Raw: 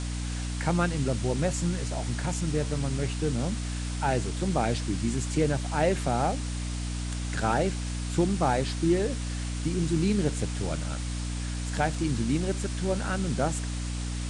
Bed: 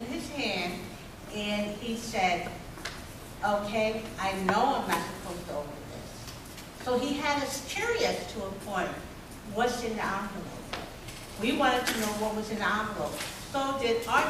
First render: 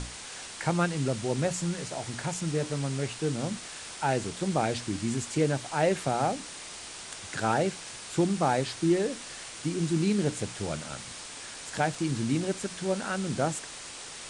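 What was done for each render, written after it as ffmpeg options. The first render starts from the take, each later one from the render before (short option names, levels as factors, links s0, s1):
-af "bandreject=f=60:t=h:w=6,bandreject=f=120:t=h:w=6,bandreject=f=180:t=h:w=6,bandreject=f=240:t=h:w=6,bandreject=f=300:t=h:w=6"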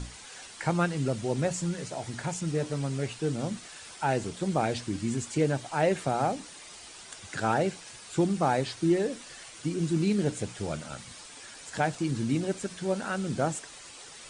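-af "afftdn=nr=8:nf=-43"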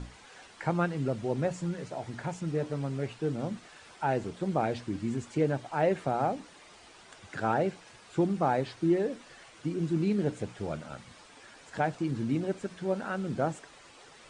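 -af "lowpass=f=1600:p=1,lowshelf=f=190:g=-4"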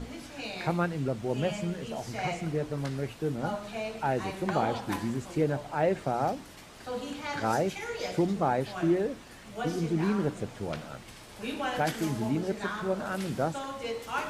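-filter_complex "[1:a]volume=0.422[s0];[0:a][s0]amix=inputs=2:normalize=0"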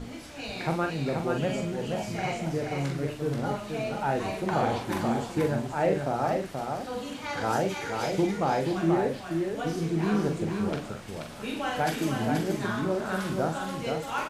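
-filter_complex "[0:a]asplit=2[s0][s1];[s1]adelay=43,volume=0.531[s2];[s0][s2]amix=inputs=2:normalize=0,aecho=1:1:480:0.596"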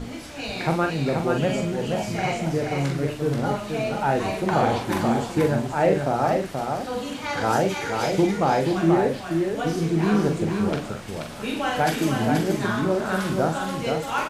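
-af "volume=1.88"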